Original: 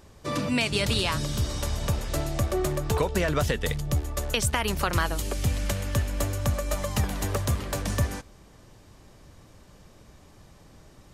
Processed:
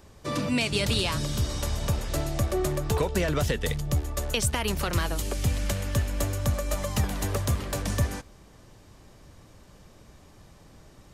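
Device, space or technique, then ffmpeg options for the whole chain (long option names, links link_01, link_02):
one-band saturation: -filter_complex "[0:a]acrossover=split=570|2600[link_01][link_02][link_03];[link_02]asoftclip=type=tanh:threshold=-28.5dB[link_04];[link_01][link_04][link_03]amix=inputs=3:normalize=0"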